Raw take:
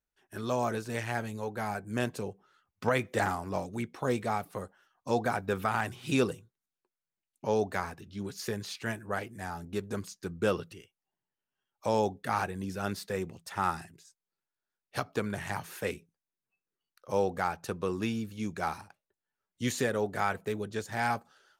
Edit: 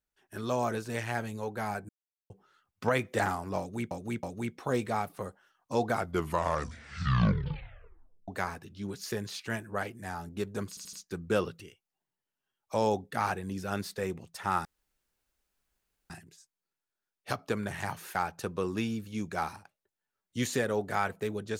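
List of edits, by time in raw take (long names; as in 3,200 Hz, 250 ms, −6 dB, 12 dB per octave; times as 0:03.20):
0:01.89–0:02.30: silence
0:03.59–0:03.91: repeat, 3 plays
0:05.21: tape stop 2.43 s
0:10.05: stutter 0.08 s, 4 plays
0:13.77: splice in room tone 1.45 s
0:15.82–0:17.40: remove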